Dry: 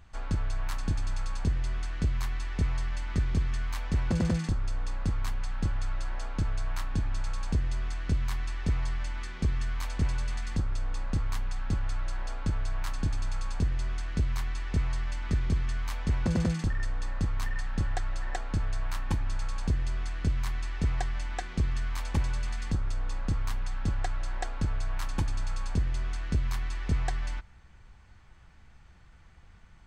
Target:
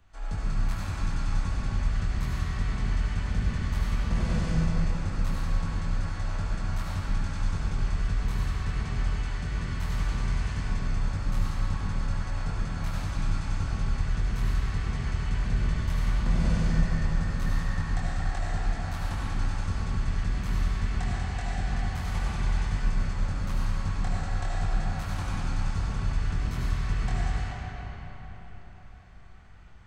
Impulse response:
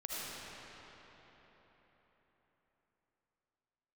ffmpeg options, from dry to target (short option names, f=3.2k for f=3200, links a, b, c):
-filter_complex "[0:a]acrossover=split=250|460|2100[a][b][c][d];[b]acompressor=threshold=-54dB:ratio=6[e];[a][e][c][d]amix=inputs=4:normalize=0,flanger=delay=20:depth=5.4:speed=2.6[f];[1:a]atrim=start_sample=2205[g];[f][g]afir=irnorm=-1:irlink=0,volume=3dB"